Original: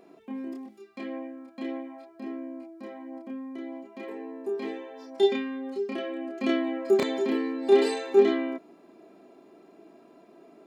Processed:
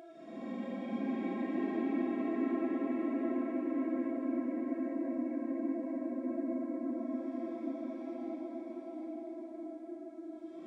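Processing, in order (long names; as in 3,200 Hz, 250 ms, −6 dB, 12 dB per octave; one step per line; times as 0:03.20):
hearing-aid frequency compression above 2,000 Hz 1.5 to 1
extreme stretch with random phases 17×, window 0.05 s, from 0:02.17
feedback delay with all-pass diffusion 759 ms, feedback 43%, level −4 dB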